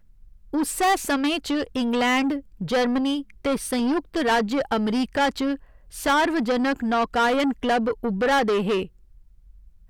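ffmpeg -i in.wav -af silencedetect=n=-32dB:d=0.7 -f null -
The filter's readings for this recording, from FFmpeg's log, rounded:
silence_start: 8.85
silence_end: 9.90 | silence_duration: 1.04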